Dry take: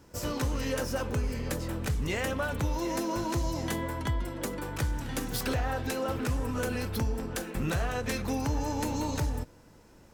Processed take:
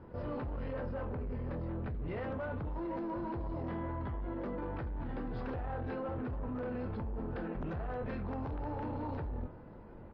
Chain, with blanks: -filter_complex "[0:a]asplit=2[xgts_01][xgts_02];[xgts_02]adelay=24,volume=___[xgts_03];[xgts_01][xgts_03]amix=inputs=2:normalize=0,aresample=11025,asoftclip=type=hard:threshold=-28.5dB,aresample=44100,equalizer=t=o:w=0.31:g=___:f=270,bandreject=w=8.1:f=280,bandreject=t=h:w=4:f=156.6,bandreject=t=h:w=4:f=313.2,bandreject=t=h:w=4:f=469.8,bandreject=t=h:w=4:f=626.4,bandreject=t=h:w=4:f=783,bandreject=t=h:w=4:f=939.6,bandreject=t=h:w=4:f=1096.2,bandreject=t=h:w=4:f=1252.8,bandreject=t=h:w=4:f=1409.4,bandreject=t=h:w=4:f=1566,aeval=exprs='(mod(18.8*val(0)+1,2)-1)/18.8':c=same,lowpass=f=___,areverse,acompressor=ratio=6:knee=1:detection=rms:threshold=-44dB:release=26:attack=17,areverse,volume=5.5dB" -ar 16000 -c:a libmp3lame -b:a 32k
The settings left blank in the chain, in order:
-7.5dB, 2, 1200